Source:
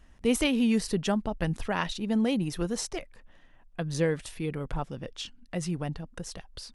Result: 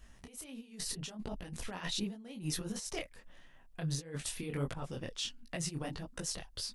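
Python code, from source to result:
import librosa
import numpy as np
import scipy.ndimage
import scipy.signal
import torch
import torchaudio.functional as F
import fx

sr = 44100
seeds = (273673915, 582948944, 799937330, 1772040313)

y = fx.high_shelf(x, sr, hz=3500.0, db=8.5)
y = fx.over_compress(y, sr, threshold_db=-32.0, ratio=-0.5)
y = fx.detune_double(y, sr, cents=51)
y = y * 10.0 ** (-3.0 / 20.0)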